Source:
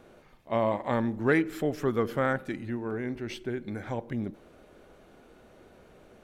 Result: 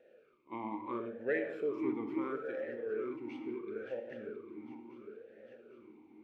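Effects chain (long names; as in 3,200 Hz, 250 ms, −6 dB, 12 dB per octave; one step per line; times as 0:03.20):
feedback delay that plays each chunk backwards 402 ms, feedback 73%, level −10 dB
convolution reverb RT60 1.0 s, pre-delay 22 ms, DRR 7.5 dB
formant filter swept between two vowels e-u 0.74 Hz
level +1 dB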